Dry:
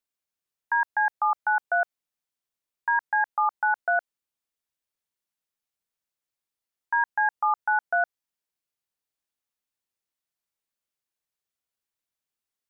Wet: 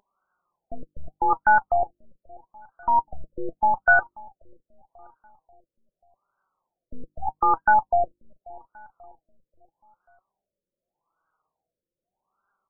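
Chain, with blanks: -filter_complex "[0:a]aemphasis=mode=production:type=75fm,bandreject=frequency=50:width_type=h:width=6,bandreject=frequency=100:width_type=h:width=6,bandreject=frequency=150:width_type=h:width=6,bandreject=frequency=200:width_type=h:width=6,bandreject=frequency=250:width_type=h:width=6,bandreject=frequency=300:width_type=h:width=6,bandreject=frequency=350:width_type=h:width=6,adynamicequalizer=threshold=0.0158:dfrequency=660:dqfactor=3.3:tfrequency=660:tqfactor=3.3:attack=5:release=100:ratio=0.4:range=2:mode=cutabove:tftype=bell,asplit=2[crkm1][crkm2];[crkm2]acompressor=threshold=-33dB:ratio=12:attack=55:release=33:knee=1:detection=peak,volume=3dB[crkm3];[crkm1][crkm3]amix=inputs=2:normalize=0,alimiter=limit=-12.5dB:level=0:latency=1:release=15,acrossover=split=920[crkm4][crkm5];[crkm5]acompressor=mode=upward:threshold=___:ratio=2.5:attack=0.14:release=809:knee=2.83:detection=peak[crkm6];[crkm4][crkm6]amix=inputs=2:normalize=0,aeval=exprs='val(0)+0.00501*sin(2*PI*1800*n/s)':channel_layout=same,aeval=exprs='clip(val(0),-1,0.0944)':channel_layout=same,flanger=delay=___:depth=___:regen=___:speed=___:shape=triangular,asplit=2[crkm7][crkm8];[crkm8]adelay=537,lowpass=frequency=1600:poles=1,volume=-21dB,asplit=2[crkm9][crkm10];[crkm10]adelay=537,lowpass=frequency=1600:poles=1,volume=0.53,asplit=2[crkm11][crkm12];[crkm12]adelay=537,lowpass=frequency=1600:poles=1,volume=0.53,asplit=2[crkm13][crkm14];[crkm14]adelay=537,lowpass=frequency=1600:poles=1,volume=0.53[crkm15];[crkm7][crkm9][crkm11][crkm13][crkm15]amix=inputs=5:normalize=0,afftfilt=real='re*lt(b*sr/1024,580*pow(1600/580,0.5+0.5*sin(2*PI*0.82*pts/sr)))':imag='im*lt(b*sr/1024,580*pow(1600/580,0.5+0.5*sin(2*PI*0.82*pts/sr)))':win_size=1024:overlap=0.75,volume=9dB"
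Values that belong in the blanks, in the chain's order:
-27dB, 5, 1.5, 48, 0.48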